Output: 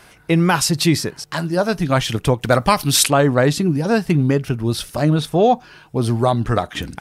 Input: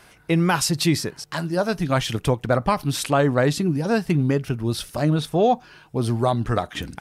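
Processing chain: 2.42–3.08 high shelf 2300 Hz +11 dB; gain +4 dB

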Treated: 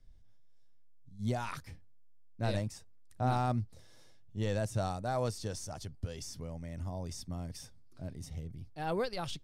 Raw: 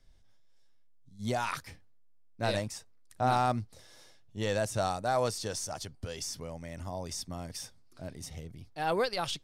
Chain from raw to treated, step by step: low shelf 300 Hz +11.5 dB; gain -7.5 dB

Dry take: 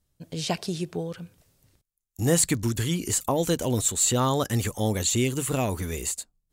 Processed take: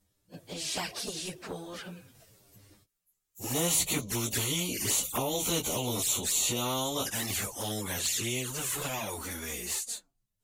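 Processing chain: Doppler pass-by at 2.99, 10 m/s, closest 14 m; low shelf 71 Hz -11 dB; plain phase-vocoder stretch 1.6×; envelope flanger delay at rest 10.3 ms, full sweep at -27.5 dBFS; spectral compressor 2:1; gain -1 dB

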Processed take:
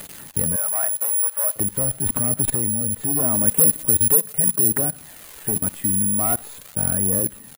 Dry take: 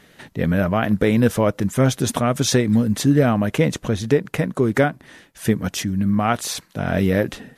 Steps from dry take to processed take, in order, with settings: tracing distortion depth 0.033 ms; treble ducked by the level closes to 1600 Hz, closed at -12.5 dBFS; sine folder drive 6 dB, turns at -4.5 dBFS; tape spacing loss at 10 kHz 29 dB; feedback echo 74 ms, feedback 36%, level -19 dB; crackle 570/s -21 dBFS; level quantiser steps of 19 dB; phaser 0.42 Hz, delay 4.1 ms, feedback 36%; careless resampling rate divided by 4×, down filtered, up zero stuff; AGC; 0.56–1.56 HPF 650 Hz 24 dB/oct; 3.47–4.68 high shelf 5700 Hz +6.5 dB; gain -4.5 dB

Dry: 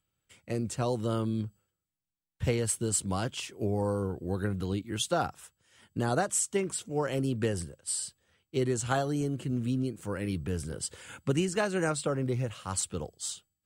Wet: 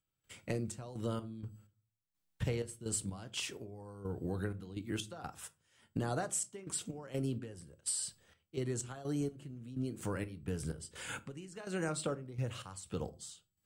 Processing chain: compressor 5:1, threshold -38 dBFS, peak gain reduction 14.5 dB; step gate ".xx.x.x." 63 bpm -12 dB; shoebox room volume 170 m³, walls furnished, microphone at 0.38 m; gain +4 dB

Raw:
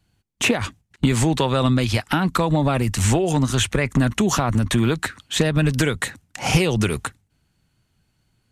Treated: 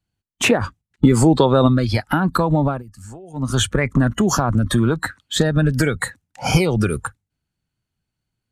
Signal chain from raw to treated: spectral noise reduction 15 dB; 0.51–1.68 dynamic EQ 390 Hz, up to +6 dB, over -32 dBFS, Q 0.71; 2.64–3.52 dip -21 dB, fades 0.19 s; gain +2 dB

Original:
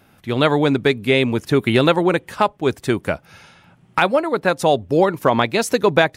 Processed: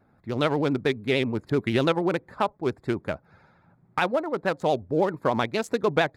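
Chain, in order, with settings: Wiener smoothing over 15 samples; vibrato 13 Hz 83 cents; gain -7.5 dB

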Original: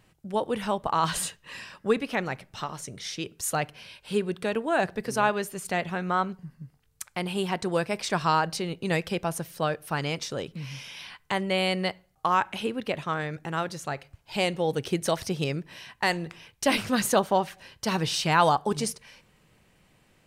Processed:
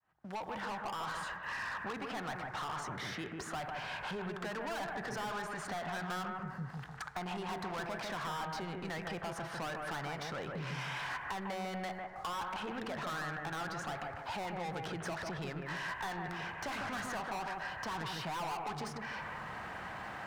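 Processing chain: opening faded in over 4.12 s; HPF 41 Hz; compressor 2.5:1, threshold -46 dBFS, peak gain reduction 19.5 dB; LPF 4400 Hz 12 dB/oct; transient shaper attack -3 dB, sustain +4 dB; band shelf 1100 Hz +13.5 dB; soft clip -34.5 dBFS, distortion -5 dB; sample leveller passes 2; analogue delay 0.149 s, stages 2048, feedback 33%, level -3.5 dB; three-band squash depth 70%; gain -2.5 dB

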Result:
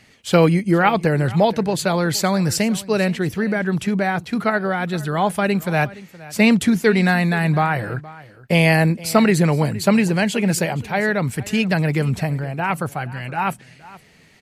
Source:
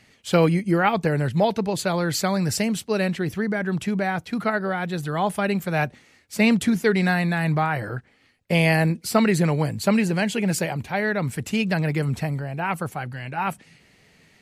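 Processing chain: echo 0.469 s -19.5 dB; gain +4 dB

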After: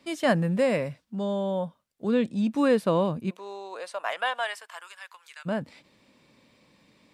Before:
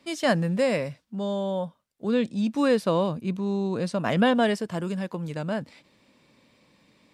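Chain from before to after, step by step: dynamic EQ 5300 Hz, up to -7 dB, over -52 dBFS, Q 1.2; 3.29–5.45 HPF 450 Hz -> 1400 Hz 24 dB/oct

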